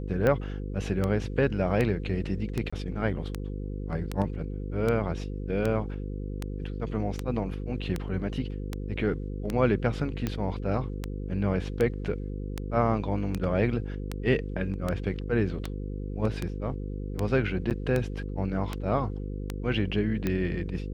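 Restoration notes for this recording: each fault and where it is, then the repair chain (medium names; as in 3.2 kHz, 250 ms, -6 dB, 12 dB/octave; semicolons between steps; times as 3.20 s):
buzz 50 Hz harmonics 10 -34 dBFS
tick 78 rpm -15 dBFS
2.70–2.73 s: dropout 25 ms
17.70–17.71 s: dropout 8.3 ms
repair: de-click; de-hum 50 Hz, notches 10; interpolate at 2.70 s, 25 ms; interpolate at 17.70 s, 8.3 ms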